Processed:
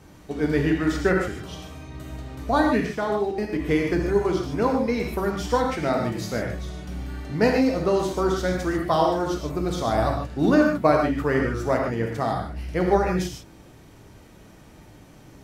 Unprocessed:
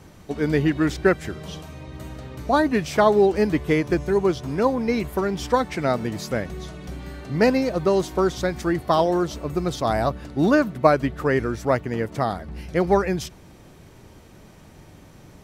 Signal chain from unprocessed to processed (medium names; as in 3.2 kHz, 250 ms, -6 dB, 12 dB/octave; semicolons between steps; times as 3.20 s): 2.86–3.59 s: level held to a coarse grid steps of 22 dB; gated-style reverb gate 170 ms flat, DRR 0.5 dB; trim -3.5 dB